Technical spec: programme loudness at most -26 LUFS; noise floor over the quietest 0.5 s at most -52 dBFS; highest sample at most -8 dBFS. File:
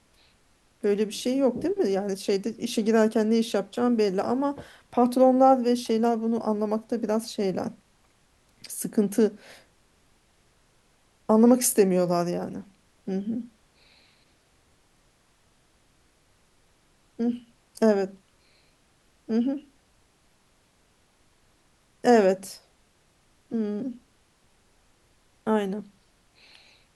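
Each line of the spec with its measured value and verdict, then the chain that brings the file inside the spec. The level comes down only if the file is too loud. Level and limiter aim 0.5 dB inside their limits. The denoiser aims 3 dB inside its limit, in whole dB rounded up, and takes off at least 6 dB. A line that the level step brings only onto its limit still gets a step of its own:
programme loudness -25.0 LUFS: fail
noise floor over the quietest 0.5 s -64 dBFS: OK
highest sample -6.5 dBFS: fail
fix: gain -1.5 dB; limiter -8.5 dBFS

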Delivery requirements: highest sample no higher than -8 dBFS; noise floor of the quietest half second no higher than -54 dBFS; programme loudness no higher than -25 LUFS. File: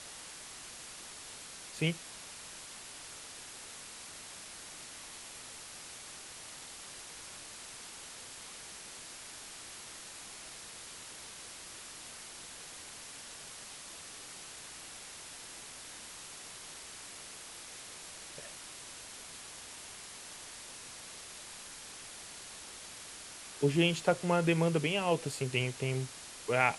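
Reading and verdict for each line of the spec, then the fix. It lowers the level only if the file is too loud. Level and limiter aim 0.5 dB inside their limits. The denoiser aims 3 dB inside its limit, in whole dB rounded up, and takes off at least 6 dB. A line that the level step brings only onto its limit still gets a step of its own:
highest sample -12.0 dBFS: OK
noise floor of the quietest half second -48 dBFS: fail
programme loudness -39.0 LUFS: OK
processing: denoiser 9 dB, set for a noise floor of -48 dBFS

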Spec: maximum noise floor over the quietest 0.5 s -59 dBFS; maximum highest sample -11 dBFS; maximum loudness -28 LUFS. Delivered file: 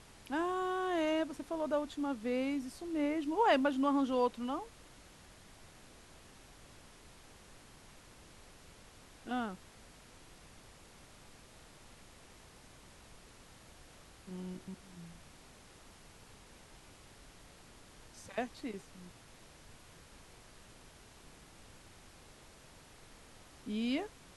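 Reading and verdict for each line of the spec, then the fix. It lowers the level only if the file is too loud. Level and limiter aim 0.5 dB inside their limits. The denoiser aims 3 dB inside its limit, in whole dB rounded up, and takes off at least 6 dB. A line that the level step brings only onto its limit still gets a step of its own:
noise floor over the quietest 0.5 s -58 dBFS: fail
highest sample -18.5 dBFS: OK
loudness -35.5 LUFS: OK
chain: denoiser 6 dB, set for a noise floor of -58 dBFS

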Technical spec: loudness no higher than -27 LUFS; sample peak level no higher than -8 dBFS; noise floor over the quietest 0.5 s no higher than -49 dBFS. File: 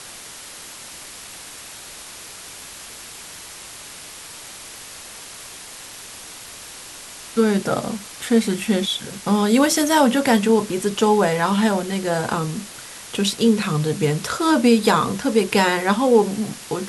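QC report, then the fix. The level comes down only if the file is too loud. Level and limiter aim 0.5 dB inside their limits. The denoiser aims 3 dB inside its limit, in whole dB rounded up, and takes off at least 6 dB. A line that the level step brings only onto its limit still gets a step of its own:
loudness -19.5 LUFS: fail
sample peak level -4.5 dBFS: fail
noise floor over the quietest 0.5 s -38 dBFS: fail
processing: denoiser 6 dB, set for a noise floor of -38 dBFS; gain -8 dB

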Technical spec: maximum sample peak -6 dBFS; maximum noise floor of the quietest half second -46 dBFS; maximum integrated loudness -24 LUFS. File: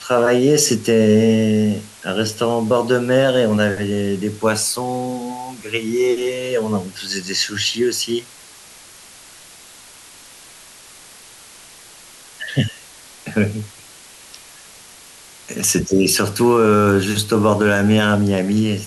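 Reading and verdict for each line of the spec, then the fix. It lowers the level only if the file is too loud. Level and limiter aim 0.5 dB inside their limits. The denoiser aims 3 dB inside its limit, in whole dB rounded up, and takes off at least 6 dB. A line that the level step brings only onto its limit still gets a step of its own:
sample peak -5.0 dBFS: fail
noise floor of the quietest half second -43 dBFS: fail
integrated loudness -17.5 LUFS: fail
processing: gain -7 dB

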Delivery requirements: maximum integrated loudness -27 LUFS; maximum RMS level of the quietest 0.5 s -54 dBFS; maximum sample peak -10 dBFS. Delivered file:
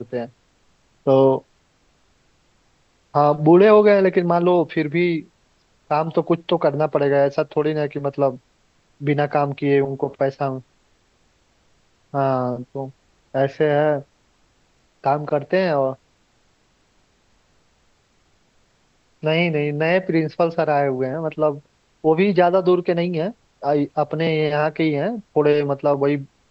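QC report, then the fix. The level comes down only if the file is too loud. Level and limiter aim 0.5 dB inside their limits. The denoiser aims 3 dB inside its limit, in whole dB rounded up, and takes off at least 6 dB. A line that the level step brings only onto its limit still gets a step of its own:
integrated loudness -19.5 LUFS: fail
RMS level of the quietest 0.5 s -61 dBFS: OK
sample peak -3.0 dBFS: fail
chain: gain -8 dB

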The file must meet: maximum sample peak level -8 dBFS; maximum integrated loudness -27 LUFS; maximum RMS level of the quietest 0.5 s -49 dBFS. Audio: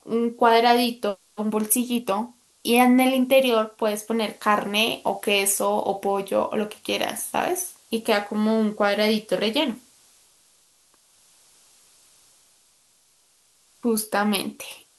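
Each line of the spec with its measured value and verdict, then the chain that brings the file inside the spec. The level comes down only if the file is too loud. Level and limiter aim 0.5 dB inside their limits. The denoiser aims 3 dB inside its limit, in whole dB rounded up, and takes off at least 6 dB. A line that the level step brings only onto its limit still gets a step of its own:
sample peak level -5.0 dBFS: fail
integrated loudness -22.5 LUFS: fail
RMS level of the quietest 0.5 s -61 dBFS: OK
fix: gain -5 dB

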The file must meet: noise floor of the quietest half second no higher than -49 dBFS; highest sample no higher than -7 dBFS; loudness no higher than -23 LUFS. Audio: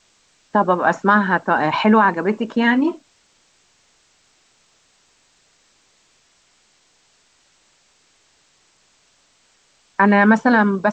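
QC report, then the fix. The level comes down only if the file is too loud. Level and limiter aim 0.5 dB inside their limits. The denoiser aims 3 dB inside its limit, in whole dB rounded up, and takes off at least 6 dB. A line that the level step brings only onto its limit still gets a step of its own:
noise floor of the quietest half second -59 dBFS: OK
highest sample -3.0 dBFS: fail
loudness -16.5 LUFS: fail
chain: gain -7 dB

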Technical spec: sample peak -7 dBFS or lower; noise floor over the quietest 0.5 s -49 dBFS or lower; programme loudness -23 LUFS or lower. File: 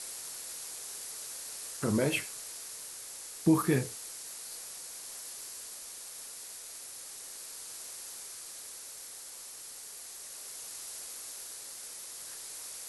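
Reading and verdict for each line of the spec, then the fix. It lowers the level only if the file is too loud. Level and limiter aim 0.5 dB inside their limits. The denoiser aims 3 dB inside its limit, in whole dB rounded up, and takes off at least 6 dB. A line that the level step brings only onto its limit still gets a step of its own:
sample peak -14.0 dBFS: OK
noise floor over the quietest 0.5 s -46 dBFS: fail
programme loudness -37.0 LUFS: OK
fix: denoiser 6 dB, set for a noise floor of -46 dBFS

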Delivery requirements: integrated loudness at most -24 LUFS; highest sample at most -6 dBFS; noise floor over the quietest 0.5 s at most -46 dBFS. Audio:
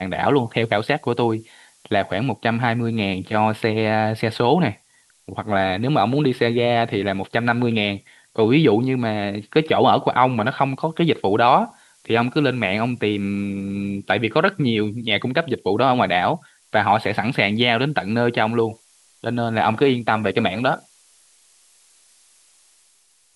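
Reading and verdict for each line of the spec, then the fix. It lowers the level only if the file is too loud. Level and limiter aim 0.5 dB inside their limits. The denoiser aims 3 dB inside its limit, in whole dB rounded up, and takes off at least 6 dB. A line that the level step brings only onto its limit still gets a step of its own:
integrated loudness -20.0 LUFS: fail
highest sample -2.5 dBFS: fail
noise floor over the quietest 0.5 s -59 dBFS: OK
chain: gain -4.5 dB

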